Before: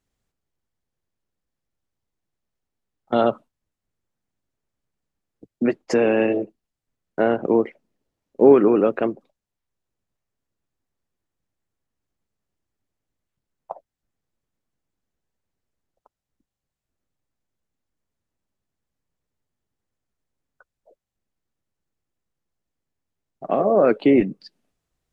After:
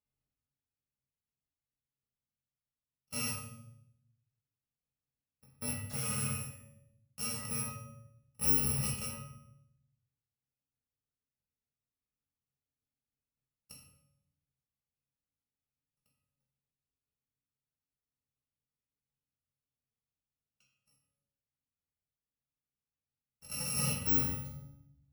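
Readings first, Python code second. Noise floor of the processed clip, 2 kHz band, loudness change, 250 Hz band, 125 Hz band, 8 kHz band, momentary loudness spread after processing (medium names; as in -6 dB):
under -85 dBFS, -13.0 dB, -13.5 dB, -22.0 dB, -2.5 dB, no reading, 19 LU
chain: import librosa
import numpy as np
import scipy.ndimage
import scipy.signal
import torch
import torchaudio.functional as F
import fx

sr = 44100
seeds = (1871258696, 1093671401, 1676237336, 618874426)

y = fx.bit_reversed(x, sr, seeds[0], block=128)
y = scipy.signal.sosfilt(scipy.signal.butter(2, 44.0, 'highpass', fs=sr, output='sos'), y)
y = fx.high_shelf(y, sr, hz=3700.0, db=-10.0)
y = fx.comb_fb(y, sr, f0_hz=140.0, decay_s=0.7, harmonics='all', damping=0.0, mix_pct=80)
y = fx.room_shoebox(y, sr, seeds[1], volume_m3=150.0, walls='mixed', distance_m=1.4)
y = y * 10.0 ** (-3.0 / 20.0)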